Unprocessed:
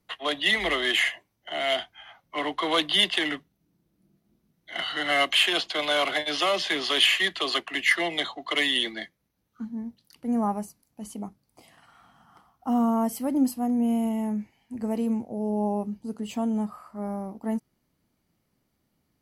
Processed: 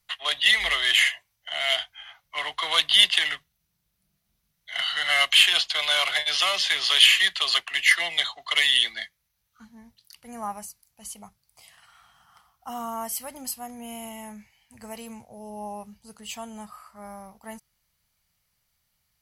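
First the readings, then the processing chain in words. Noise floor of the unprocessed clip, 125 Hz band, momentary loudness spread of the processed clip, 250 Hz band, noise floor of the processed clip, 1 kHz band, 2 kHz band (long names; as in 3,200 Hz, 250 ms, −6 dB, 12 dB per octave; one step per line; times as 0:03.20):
−75 dBFS, below −10 dB, 22 LU, −16.5 dB, −76 dBFS, −2.5 dB, +3.0 dB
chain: guitar amp tone stack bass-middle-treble 10-0-10
level +7.5 dB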